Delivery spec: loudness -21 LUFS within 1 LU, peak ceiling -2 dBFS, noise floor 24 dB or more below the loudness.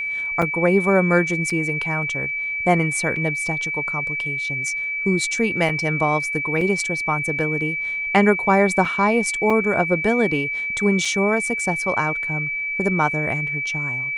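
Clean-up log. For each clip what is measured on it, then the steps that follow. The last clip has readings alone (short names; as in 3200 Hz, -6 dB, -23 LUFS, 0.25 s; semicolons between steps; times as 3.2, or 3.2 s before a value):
dropouts 8; longest dropout 3.9 ms; steady tone 2300 Hz; tone level -23 dBFS; loudness -20.0 LUFS; peak -1.5 dBFS; loudness target -21.0 LUFS
-> interpolate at 0.42/1.5/3.16/5.69/6.61/8.85/9.5/11.05, 3.9 ms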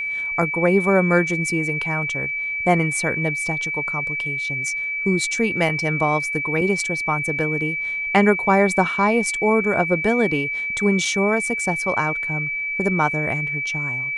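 dropouts 0; steady tone 2300 Hz; tone level -23 dBFS
-> notch 2300 Hz, Q 30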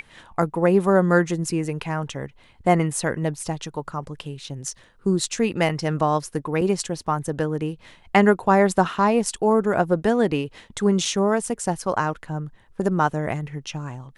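steady tone none; loudness -22.5 LUFS; peak -2.5 dBFS; loudness target -21.0 LUFS
-> gain +1.5 dB; limiter -2 dBFS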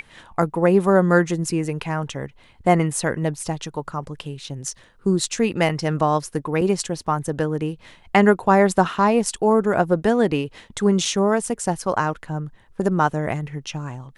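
loudness -21.0 LUFS; peak -2.0 dBFS; noise floor -52 dBFS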